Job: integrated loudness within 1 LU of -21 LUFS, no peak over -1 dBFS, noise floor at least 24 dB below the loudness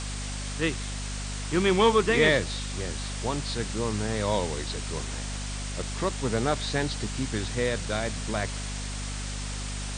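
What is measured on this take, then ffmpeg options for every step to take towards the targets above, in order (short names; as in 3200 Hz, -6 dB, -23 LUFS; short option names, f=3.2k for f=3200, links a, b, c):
hum 50 Hz; harmonics up to 250 Hz; hum level -32 dBFS; noise floor -34 dBFS; noise floor target -53 dBFS; loudness -28.5 LUFS; peak -9.5 dBFS; loudness target -21.0 LUFS
-> -af "bandreject=f=50:t=h:w=6,bandreject=f=100:t=h:w=6,bandreject=f=150:t=h:w=6,bandreject=f=200:t=h:w=6,bandreject=f=250:t=h:w=6"
-af "afftdn=nr=19:nf=-34"
-af "volume=7.5dB"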